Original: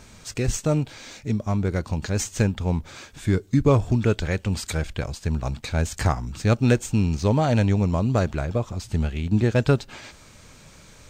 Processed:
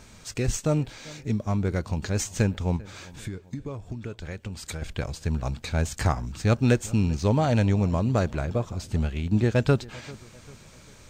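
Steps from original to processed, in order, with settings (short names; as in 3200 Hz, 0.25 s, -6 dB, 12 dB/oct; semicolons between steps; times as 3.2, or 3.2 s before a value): 2.76–4.82 compressor 16:1, threshold -29 dBFS, peak gain reduction 17 dB; darkening echo 0.394 s, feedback 46%, low-pass 2400 Hz, level -21 dB; gain -2 dB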